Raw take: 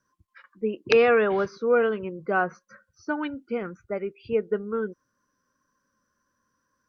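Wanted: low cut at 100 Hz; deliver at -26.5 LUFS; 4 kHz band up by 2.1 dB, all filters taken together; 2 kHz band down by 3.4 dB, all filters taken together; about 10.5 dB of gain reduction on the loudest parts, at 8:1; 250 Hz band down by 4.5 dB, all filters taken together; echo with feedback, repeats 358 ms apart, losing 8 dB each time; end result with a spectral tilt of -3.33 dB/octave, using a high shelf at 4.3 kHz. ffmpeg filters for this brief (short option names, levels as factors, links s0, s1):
-af "highpass=100,equalizer=f=250:t=o:g=-5.5,equalizer=f=2000:t=o:g=-5.5,equalizer=f=4000:t=o:g=8.5,highshelf=f=4300:g=-7.5,acompressor=threshold=0.0447:ratio=8,aecho=1:1:358|716|1074|1432|1790:0.398|0.159|0.0637|0.0255|0.0102,volume=2.24"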